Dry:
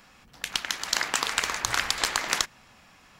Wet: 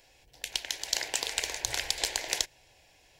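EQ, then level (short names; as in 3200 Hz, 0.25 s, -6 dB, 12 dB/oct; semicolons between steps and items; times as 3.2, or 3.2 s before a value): fixed phaser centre 510 Hz, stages 4; -2.0 dB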